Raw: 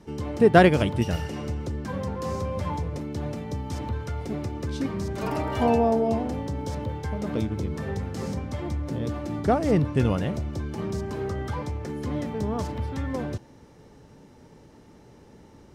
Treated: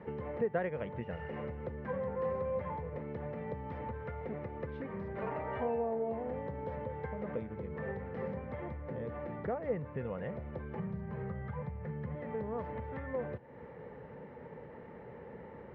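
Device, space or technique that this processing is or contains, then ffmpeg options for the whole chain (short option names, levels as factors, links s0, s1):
bass amplifier: -filter_complex "[0:a]asettb=1/sr,asplit=3[s0][s1][s2];[s0]atrim=end=10.794[s3];[s1]atrim=start=10.79:end=12.15,asetpts=PTS-STARTPTS,afade=t=in:d=0.004:c=qsin,afade=t=out:st=1.356:d=0.004:c=qsin,lowshelf=f=220:t=q:w=3:g=6.5[s4];[s2]atrim=start=12.146[s5];[s3][s4]acrossfade=d=0.004:c1=hsin:c2=qsin[s6];[s6][s5]acrossfade=d=0.004:c1=qsin:c2=hsin,acompressor=threshold=0.01:ratio=4,highpass=77,equalizer=f=100:t=q:w=4:g=-6,equalizer=f=300:t=q:w=4:g=-9,equalizer=f=500:t=q:w=4:g=10,equalizer=f=930:t=q:w=4:g=3,equalizer=f=1900:t=q:w=4:g=7,lowpass=f=2300:w=0.5412,lowpass=f=2300:w=1.3066,volume=1.19"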